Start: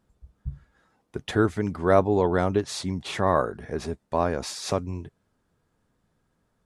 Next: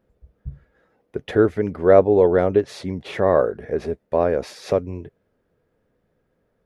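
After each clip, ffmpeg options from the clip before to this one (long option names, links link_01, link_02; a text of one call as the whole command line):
ffmpeg -i in.wav -af "equalizer=frequency=500:width_type=o:width=1:gain=11,equalizer=frequency=1000:width_type=o:width=1:gain=-5,equalizer=frequency=2000:width_type=o:width=1:gain=4,equalizer=frequency=4000:width_type=o:width=1:gain=-3,equalizer=frequency=8000:width_type=o:width=1:gain=-11" out.wav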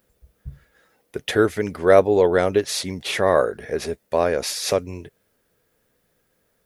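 ffmpeg -i in.wav -af "crystalizer=i=9.5:c=0,volume=-3dB" out.wav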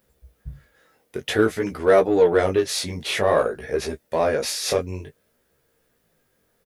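ffmpeg -i in.wav -filter_complex "[0:a]flanger=delay=15:depth=7.9:speed=0.53,asplit=2[link_01][link_02];[link_02]asoftclip=type=tanh:threshold=-22.5dB,volume=-7dB[link_03];[link_01][link_03]amix=inputs=2:normalize=0,asplit=2[link_04][link_05];[link_05]adelay=13,volume=-10.5dB[link_06];[link_04][link_06]amix=inputs=2:normalize=0" out.wav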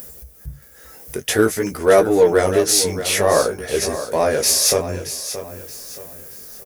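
ffmpeg -i in.wav -filter_complex "[0:a]acompressor=mode=upward:threshold=-37dB:ratio=2.5,aexciter=amount=2.3:drive=8.6:freq=5100,asplit=2[link_01][link_02];[link_02]aecho=0:1:625|1250|1875|2500:0.266|0.0931|0.0326|0.0114[link_03];[link_01][link_03]amix=inputs=2:normalize=0,volume=3dB" out.wav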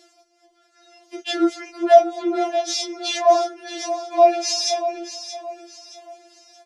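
ffmpeg -i in.wav -af "highpass=240,equalizer=frequency=670:width_type=q:width=4:gain=5,equalizer=frequency=1200:width_type=q:width=4:gain=-7,equalizer=frequency=1800:width_type=q:width=4:gain=-6,lowpass=frequency=5400:width=0.5412,lowpass=frequency=5400:width=1.3066,afftfilt=real='re*4*eq(mod(b,16),0)':imag='im*4*eq(mod(b,16),0)':win_size=2048:overlap=0.75" out.wav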